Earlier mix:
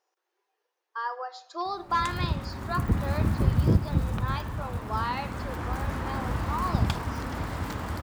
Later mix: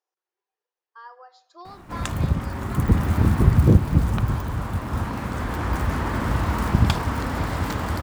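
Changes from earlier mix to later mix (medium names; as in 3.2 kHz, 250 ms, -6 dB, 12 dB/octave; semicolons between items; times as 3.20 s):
speech -11.0 dB; background +7.0 dB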